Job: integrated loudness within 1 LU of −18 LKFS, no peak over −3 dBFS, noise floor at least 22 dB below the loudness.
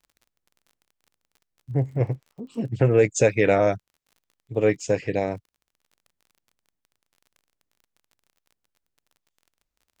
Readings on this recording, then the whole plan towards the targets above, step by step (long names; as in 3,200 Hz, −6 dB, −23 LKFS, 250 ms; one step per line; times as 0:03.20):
crackle rate 32 per second; integrated loudness −23.5 LKFS; sample peak −7.0 dBFS; target loudness −18.0 LKFS
→ click removal
level +5.5 dB
brickwall limiter −3 dBFS